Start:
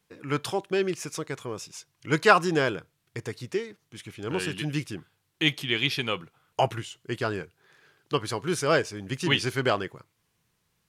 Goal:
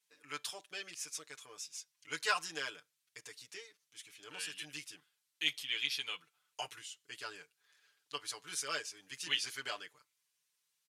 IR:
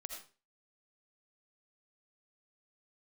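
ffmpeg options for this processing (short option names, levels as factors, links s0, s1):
-af "bandpass=f=8000:t=q:w=0.52:csg=0,aecho=1:1:6.8:0.94,volume=0.501"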